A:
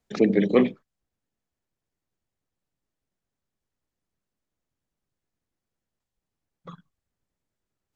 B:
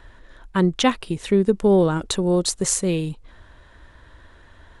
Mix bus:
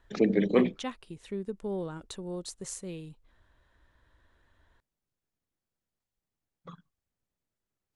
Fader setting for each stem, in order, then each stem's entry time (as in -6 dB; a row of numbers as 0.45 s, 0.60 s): -4.5 dB, -18.0 dB; 0.00 s, 0.00 s